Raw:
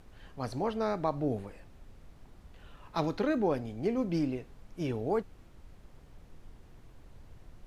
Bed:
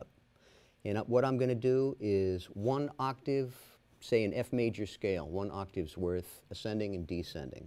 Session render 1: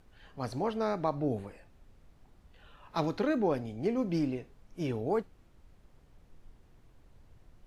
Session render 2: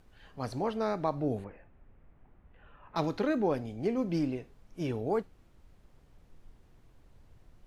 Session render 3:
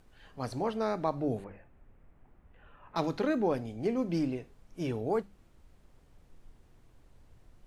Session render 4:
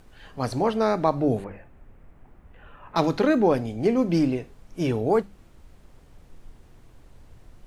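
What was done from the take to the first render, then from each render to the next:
noise print and reduce 6 dB
1.44–2.96 s: low-pass 2.4 kHz 24 dB/octave
peaking EQ 8.5 kHz +3 dB 0.7 oct; hum notches 50/100/150/200 Hz
trim +9 dB

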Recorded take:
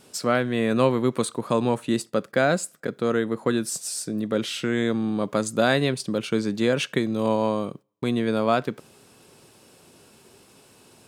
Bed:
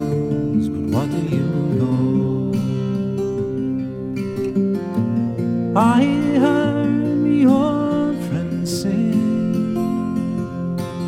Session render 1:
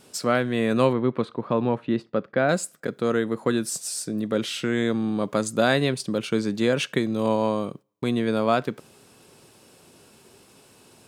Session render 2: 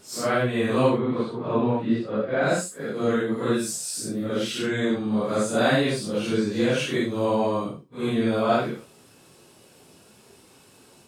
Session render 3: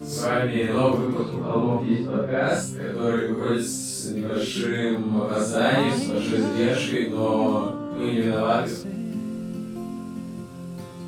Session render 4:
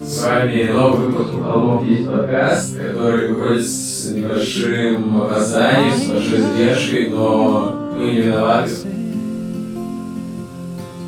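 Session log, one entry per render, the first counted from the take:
0.93–2.49 s: distance through air 320 m
phase randomisation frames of 200 ms
add bed -12.5 dB
trim +7.5 dB; peak limiter -2 dBFS, peak gain reduction 2.5 dB

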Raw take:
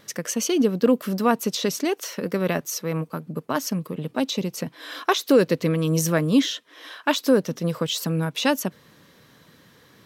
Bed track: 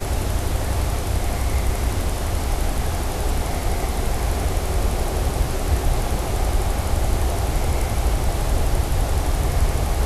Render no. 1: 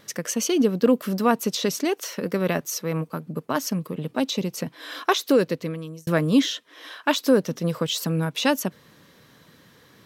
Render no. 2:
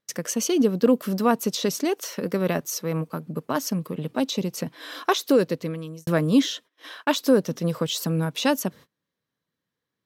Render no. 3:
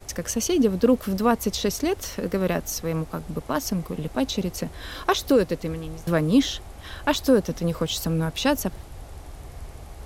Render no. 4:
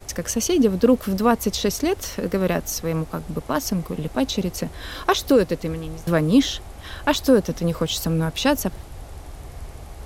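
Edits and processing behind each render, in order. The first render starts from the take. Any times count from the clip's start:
5.17–6.07 s: fade out linear
dynamic bell 2.2 kHz, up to -3 dB, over -39 dBFS, Q 0.88; gate -43 dBFS, range -31 dB
add bed track -19.5 dB
trim +2.5 dB

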